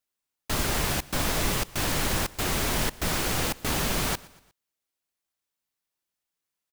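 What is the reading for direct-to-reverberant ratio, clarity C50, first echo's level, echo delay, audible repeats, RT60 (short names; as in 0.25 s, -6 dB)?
none, none, -22.0 dB, 0.119 s, 3, none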